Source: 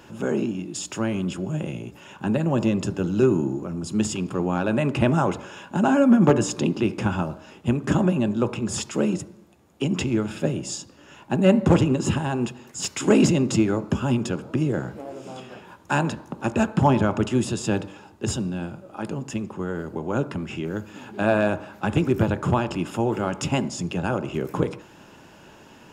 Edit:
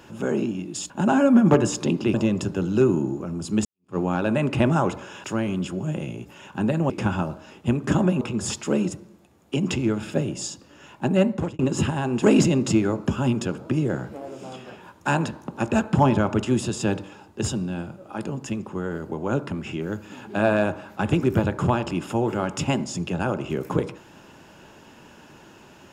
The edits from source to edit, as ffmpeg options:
ffmpeg -i in.wav -filter_complex "[0:a]asplit=9[link_01][link_02][link_03][link_04][link_05][link_06][link_07][link_08][link_09];[link_01]atrim=end=0.902[link_10];[link_02]atrim=start=5.658:end=6.902[link_11];[link_03]atrim=start=2.558:end=4.07,asetpts=PTS-STARTPTS,afade=type=out:start_time=1.508:duration=0.004:curve=hsin[link_12];[link_04]atrim=start=4.07:end=5.662,asetpts=PTS-STARTPTS,afade=type=in:duration=0.31:curve=exp[link_13];[link_05]atrim=start=0.898:end=2.562[link_14];[link_06]atrim=start=6.898:end=8.212[link_15];[link_07]atrim=start=8.488:end=11.87,asetpts=PTS-STARTPTS,afade=type=out:start_time=2.872:duration=0.51[link_16];[link_08]atrim=start=11.87:end=12.502,asetpts=PTS-STARTPTS,afade=type=in:duration=0.004:curve=hsin[link_17];[link_09]atrim=start=13.058[link_18];[link_10][link_11]acrossfade=duration=0.004:curve1=hsin:curve2=hsin[link_19];[link_12][link_13]concat=n=2:v=0:a=1[link_20];[link_19][link_20]acrossfade=duration=0.004:curve1=hsin:curve2=hsin[link_21];[link_21][link_14]acrossfade=duration=0.004:curve1=hsin:curve2=hsin[link_22];[link_22][link_15]acrossfade=duration=0.004:curve1=hsin:curve2=hsin[link_23];[link_16][link_17]concat=n=2:v=0:a=1[link_24];[link_23][link_24]acrossfade=duration=0.004:curve1=hsin:curve2=hsin[link_25];[link_25][link_18]acrossfade=duration=0.004:curve1=hsin:curve2=hsin" out.wav

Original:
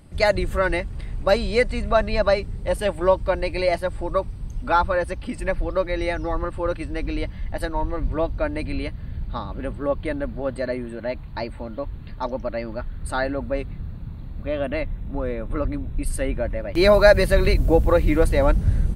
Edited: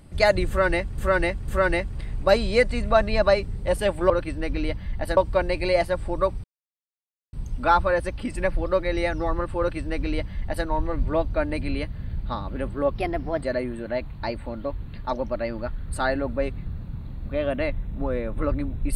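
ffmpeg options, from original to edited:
ffmpeg -i in.wav -filter_complex "[0:a]asplit=8[link_01][link_02][link_03][link_04][link_05][link_06][link_07][link_08];[link_01]atrim=end=0.982[link_09];[link_02]atrim=start=0.478:end=0.982[link_10];[link_03]atrim=start=0.478:end=3.102[link_11];[link_04]atrim=start=6.628:end=7.702[link_12];[link_05]atrim=start=3.098:end=4.37,asetpts=PTS-STARTPTS,afade=type=out:start_time=1.268:duration=0.004:curve=hsin,apad=pad_dur=0.89[link_13];[link_06]atrim=start=4.37:end=9.994,asetpts=PTS-STARTPTS,afade=type=in:duration=0.004:curve=hsin[link_14];[link_07]atrim=start=9.99:end=10.55,asetpts=PTS-STARTPTS,asetrate=52920,aresample=44100[link_15];[link_08]atrim=start=10.546[link_16];[link_09][link_10]acrossfade=duration=0.004:curve1=hsin:curve2=hsin[link_17];[link_17][link_11]acrossfade=duration=0.004:curve1=hsin:curve2=hsin[link_18];[link_18][link_12]acrossfade=duration=0.004:curve1=hsin:curve2=hsin[link_19];[link_13][link_14]concat=n=2:v=0:a=1[link_20];[link_19][link_20]acrossfade=duration=0.004:curve1=hsin:curve2=hsin[link_21];[link_21][link_15]acrossfade=duration=0.004:curve1=hsin:curve2=hsin[link_22];[link_22][link_16]acrossfade=duration=0.004:curve1=hsin:curve2=hsin" out.wav

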